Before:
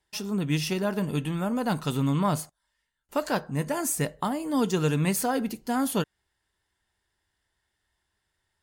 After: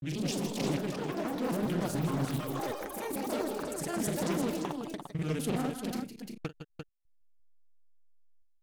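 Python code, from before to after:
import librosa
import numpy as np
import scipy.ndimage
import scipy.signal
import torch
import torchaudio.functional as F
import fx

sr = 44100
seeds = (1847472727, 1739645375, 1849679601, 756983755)

p1 = fx.block_reorder(x, sr, ms=150.0, group=4)
p2 = fx.peak_eq(p1, sr, hz=1100.0, db=-8.0, octaves=0.53)
p3 = fx.over_compress(p2, sr, threshold_db=-36.0, ratio=-1.0)
p4 = p2 + F.gain(torch.from_numpy(p3), -2.5).numpy()
p5 = fx.backlash(p4, sr, play_db=-42.0)
p6 = fx.step_gate(p5, sr, bpm=64, pattern='xxxx..xx', floor_db=-24.0, edge_ms=4.5)
p7 = fx.granulator(p6, sr, seeds[0], grain_ms=100.0, per_s=20.0, spray_ms=34.0, spread_st=0)
p8 = fx.echo_pitch(p7, sr, ms=109, semitones=5, count=3, db_per_echo=-3.0)
p9 = p8 + fx.echo_multitap(p8, sr, ms=(44, 154, 161, 347), db=(-14.5, -18.5, -10.0, -6.5), dry=0)
p10 = fx.doppler_dist(p9, sr, depth_ms=0.37)
y = F.gain(torch.from_numpy(p10), -7.0).numpy()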